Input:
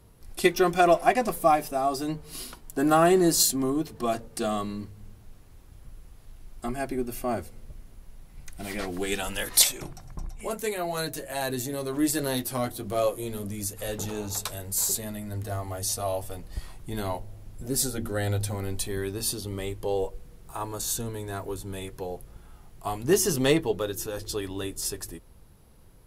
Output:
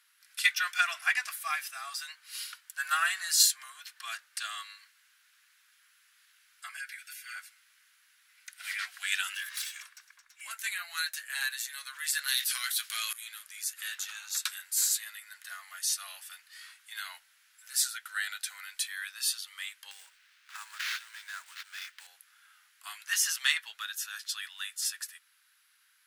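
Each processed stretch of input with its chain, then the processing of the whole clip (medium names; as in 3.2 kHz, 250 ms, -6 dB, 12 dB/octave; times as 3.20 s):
6.77–7.36 s: Chebyshev high-pass 1.4 kHz, order 6 + comb 7.5 ms, depth 97% + compression, threshold -40 dBFS
9.33–10.41 s: comb filter that takes the minimum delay 1.8 ms + compression 4:1, threshold -34 dBFS
12.28–13.13 s: FFT filter 170 Hz 0 dB, 360 Hz -14 dB, 4.1 kHz +3 dB + level flattener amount 100%
19.91–22.07 s: sample-rate reducer 8.6 kHz, jitter 20% + compression, threshold -30 dBFS
whole clip: elliptic high-pass 1.5 kHz, stop band 80 dB; tilt EQ -2.5 dB/octave; trim +7 dB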